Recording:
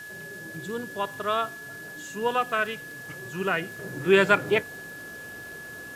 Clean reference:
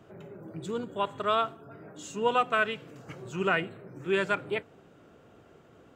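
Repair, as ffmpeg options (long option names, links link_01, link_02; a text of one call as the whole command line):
ffmpeg -i in.wav -af "adeclick=threshold=4,bandreject=frequency=1700:width=30,afwtdn=0.0032,asetnsamples=nb_out_samples=441:pad=0,asendcmd='3.79 volume volume -8.5dB',volume=0dB" out.wav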